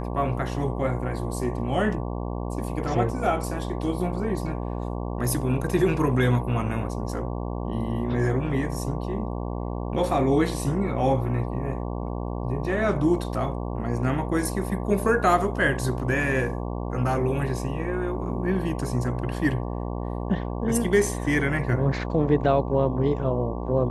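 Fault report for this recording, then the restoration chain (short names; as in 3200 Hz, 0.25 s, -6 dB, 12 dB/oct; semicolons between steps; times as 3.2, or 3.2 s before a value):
buzz 60 Hz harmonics 19 -30 dBFS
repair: de-hum 60 Hz, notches 19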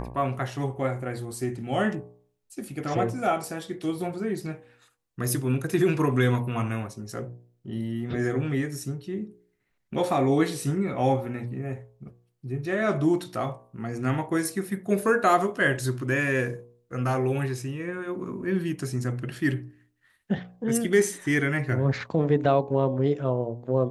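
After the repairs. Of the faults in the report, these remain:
none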